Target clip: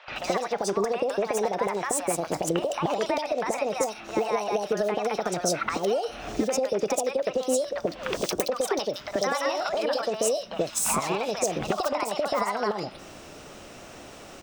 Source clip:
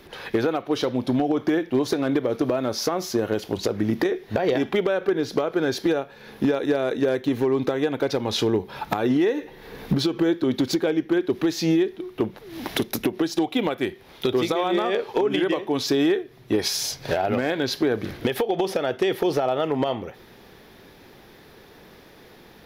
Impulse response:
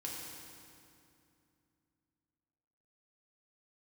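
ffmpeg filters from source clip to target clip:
-filter_complex "[0:a]acompressor=threshold=-27dB:ratio=6,asetrate=69237,aresample=44100,acrossover=split=800|3400[a][b][c];[a]adelay=80[d];[c]adelay=160[e];[d][b][e]amix=inputs=3:normalize=0,volume=5.5dB"

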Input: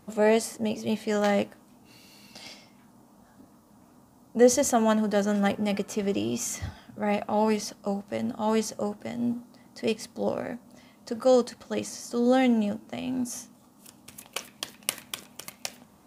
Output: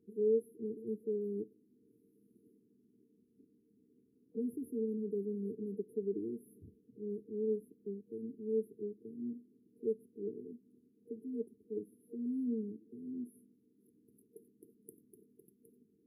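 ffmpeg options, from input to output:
-filter_complex "[0:a]afftfilt=real='re*(1-between(b*sr/4096,470,10000))':imag='im*(1-between(b*sr/4096,470,10000))':win_size=4096:overlap=0.75,asplit=3[a][b][c];[a]bandpass=f=730:t=q:w=8,volume=0dB[d];[b]bandpass=f=1.09k:t=q:w=8,volume=-6dB[e];[c]bandpass=f=2.44k:t=q:w=8,volume=-9dB[f];[d][e][f]amix=inputs=3:normalize=0,volume=11dB"

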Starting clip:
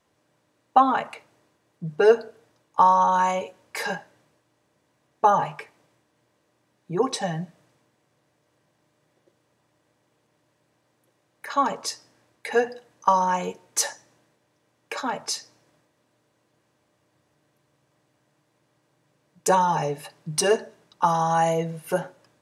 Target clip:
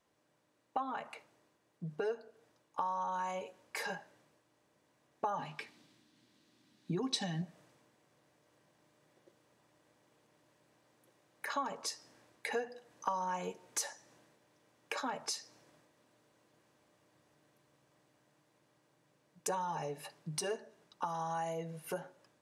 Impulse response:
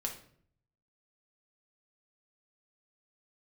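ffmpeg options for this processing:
-filter_complex "[0:a]dynaudnorm=f=270:g=31:m=11.5dB,equalizer=f=100:t=o:w=0.96:g=-5,acompressor=threshold=-31dB:ratio=3,asettb=1/sr,asplit=3[a][b][c];[a]atrim=end=5.384[d];[b]atrim=start=5.38:end=7.42,asetpts=PTS-STARTPTS,afade=t=in:d=0.004:c=qsin,afade=t=out:st=2.036:d=0.004:c=qsin,equalizer=f=250:t=o:w=1:g=10,equalizer=f=500:t=o:w=1:g=-7,equalizer=f=1k:t=o:w=1:g=-3,equalizer=f=4k:t=o:w=1:g=10[e];[c]atrim=start=7.416[f];[d][e]acrossfade=d=0.004:c1=hsin:c2=qsin[g];[g][f]acrossfade=d=0.004:c1=qsin:c2=hsin,volume=-7dB"

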